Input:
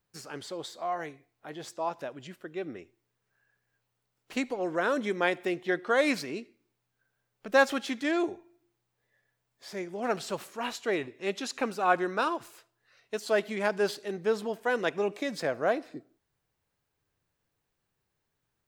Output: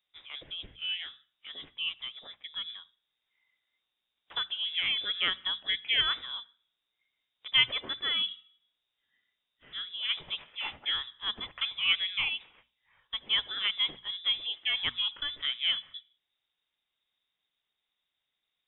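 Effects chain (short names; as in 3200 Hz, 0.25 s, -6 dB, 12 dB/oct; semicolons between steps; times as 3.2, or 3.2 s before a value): inverted band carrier 3700 Hz; notches 60/120/180/240 Hz; gain -2.5 dB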